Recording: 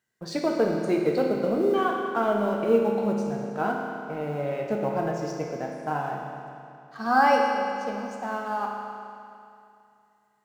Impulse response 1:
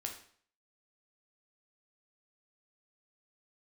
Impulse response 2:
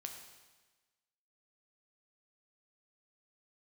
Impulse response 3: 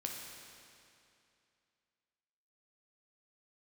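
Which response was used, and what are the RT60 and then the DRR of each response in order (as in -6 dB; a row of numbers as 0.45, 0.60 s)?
3; 0.55, 1.3, 2.6 s; 1.5, 3.0, -0.5 dB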